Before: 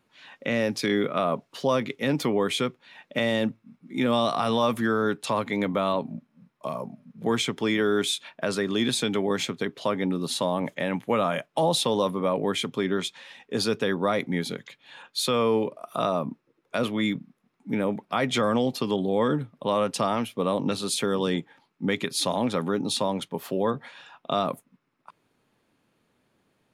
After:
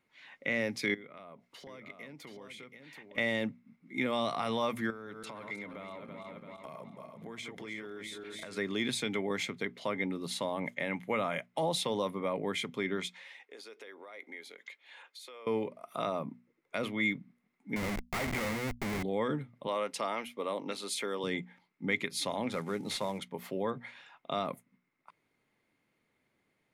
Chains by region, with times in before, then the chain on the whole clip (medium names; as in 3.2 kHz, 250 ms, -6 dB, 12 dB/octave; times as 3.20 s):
0.94–3.18 s: compression 5:1, threshold -40 dBFS + delay 729 ms -6 dB
4.90–8.57 s: backward echo that repeats 167 ms, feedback 61%, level -8 dB + compression 10:1, threshold -32 dBFS
13.15–15.47 s: high-pass 350 Hz 24 dB/octave + compression, threshold -39 dBFS
17.76–19.03 s: low-pass 2.2 kHz 24 dB/octave + Schmitt trigger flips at -33 dBFS
19.67–21.24 s: high-pass 320 Hz + band-stop 740 Hz, Q 22
22.52–23.19 s: CVSD coder 64 kbps + band-stop 280 Hz, Q 7.1
whole clip: peaking EQ 2.1 kHz +14 dB 0.21 oct; hum notches 60/120/180/240 Hz; trim -8.5 dB